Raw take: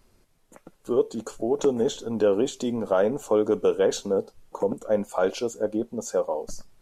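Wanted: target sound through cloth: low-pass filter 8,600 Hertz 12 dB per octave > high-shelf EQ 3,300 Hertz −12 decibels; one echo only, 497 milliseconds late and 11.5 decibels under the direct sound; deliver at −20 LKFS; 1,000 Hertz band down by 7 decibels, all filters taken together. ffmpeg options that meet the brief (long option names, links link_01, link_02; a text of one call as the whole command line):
ffmpeg -i in.wav -af "lowpass=8600,equalizer=frequency=1000:width_type=o:gain=-9,highshelf=frequency=3300:gain=-12,aecho=1:1:497:0.266,volume=7.5dB" out.wav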